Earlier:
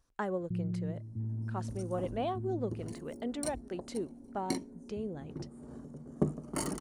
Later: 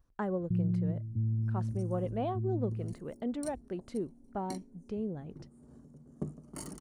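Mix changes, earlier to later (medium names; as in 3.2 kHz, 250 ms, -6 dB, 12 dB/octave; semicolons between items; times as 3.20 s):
speech: add peaking EQ 7.6 kHz -15 dB 2.4 oct; second sound -11.5 dB; master: add tone controls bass +6 dB, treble +5 dB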